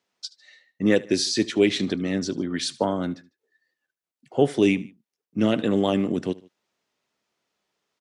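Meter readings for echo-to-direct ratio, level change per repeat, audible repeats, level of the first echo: -20.0 dB, -6.0 dB, 2, -21.0 dB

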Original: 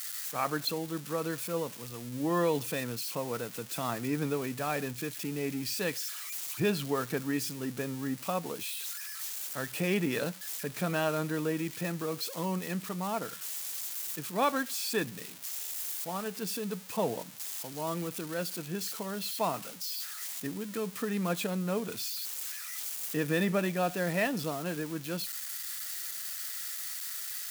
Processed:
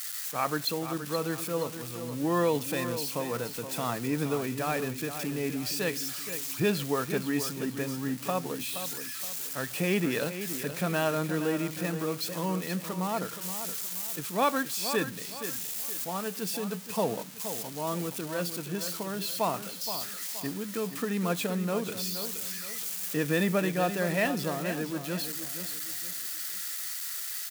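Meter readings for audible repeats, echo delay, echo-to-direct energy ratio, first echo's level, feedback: 3, 0.472 s, -9.5 dB, -10.0 dB, 35%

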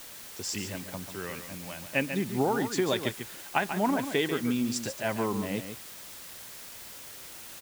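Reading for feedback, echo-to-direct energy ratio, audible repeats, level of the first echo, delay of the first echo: no steady repeat, -9.0 dB, 1, -9.0 dB, 0.142 s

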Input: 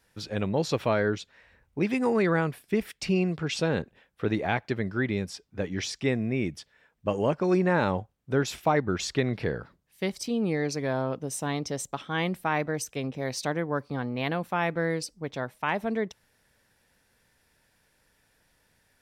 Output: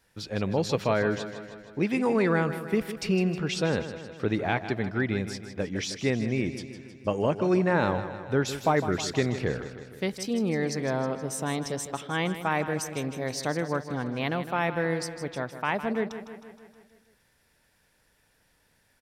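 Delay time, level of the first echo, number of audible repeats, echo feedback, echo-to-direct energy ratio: 0.157 s, -11.5 dB, 6, 60%, -9.5 dB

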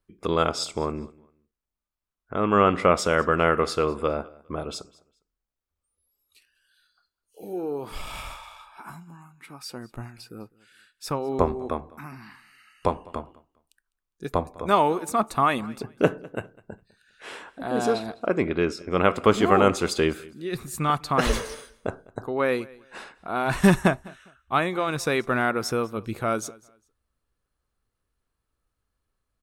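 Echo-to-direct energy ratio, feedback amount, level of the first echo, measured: -22.5 dB, no steady repeat, -23.0 dB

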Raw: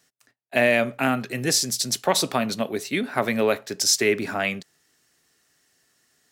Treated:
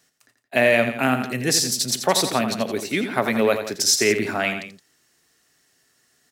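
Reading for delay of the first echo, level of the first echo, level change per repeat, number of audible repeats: 85 ms, -9.0 dB, -4.5 dB, 2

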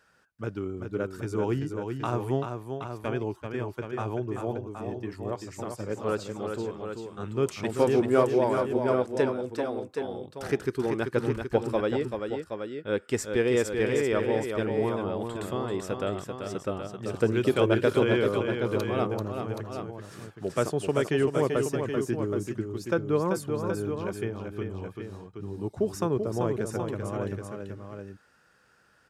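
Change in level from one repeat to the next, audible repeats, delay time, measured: -2.0 dB, 2, 0.387 s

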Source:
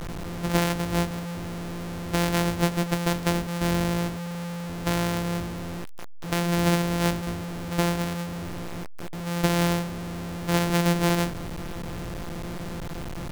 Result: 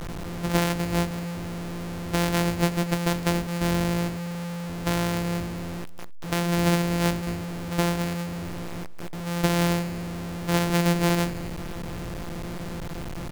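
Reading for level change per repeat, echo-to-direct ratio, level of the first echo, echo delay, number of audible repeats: no steady repeat, -20.5 dB, -20.5 dB, 0.255 s, 1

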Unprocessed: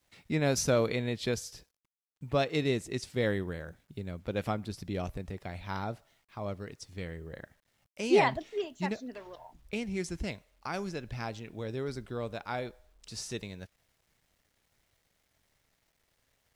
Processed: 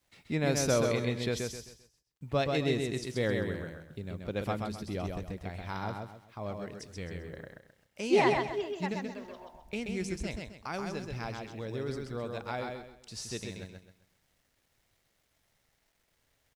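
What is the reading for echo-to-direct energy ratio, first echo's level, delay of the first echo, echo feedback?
-3.5 dB, -4.0 dB, 0.131 s, 32%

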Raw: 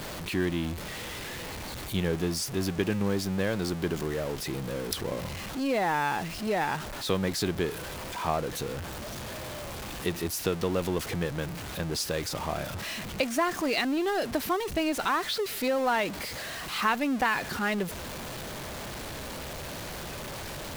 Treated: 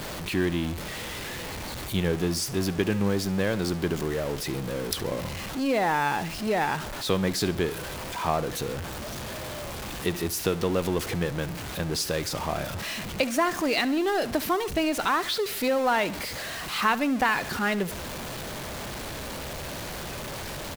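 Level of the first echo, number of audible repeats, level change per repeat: -18.0 dB, 2, -6.0 dB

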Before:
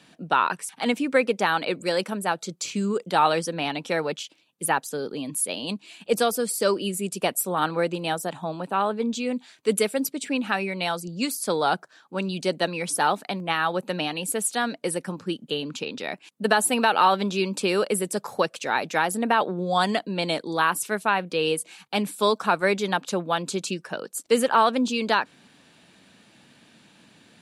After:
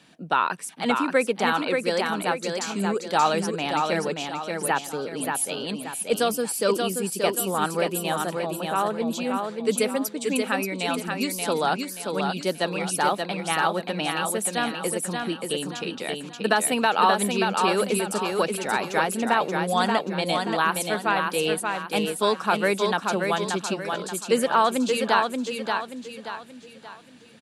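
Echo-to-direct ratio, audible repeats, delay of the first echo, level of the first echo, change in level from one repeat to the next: -4.0 dB, 4, 0.58 s, -4.5 dB, -8.0 dB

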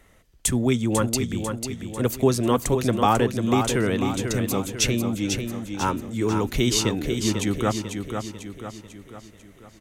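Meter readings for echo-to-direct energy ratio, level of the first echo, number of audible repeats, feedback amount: -5.5 dB, -6.5 dB, 5, 49%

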